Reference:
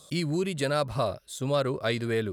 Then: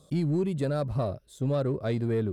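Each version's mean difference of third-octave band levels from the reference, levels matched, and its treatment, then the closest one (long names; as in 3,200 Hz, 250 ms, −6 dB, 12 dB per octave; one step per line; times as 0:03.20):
6.5 dB: tilt shelving filter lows +8.5 dB, about 700 Hz
in parallel at −6.5 dB: hard clipping −21 dBFS, distortion −12 dB
on the sum: level −7 dB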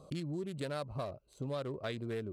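4.0 dB: adaptive Wiener filter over 25 samples
downward compressor 2.5 to 1, threshold −49 dBFS, peak gain reduction 17.5 dB
level +5 dB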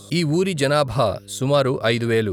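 1.0 dB: reversed playback
upward compression, threshold −32 dBFS
reversed playback
hum with harmonics 100 Hz, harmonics 5, −54 dBFS
level +8.5 dB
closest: third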